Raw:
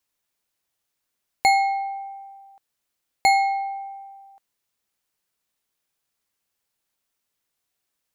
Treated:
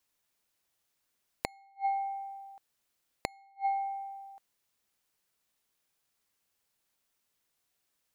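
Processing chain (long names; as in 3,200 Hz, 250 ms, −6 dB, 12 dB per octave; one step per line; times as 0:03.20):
dynamic equaliser 1,000 Hz, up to +5 dB, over −28 dBFS, Q 0.9
gate with flip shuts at −15 dBFS, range −42 dB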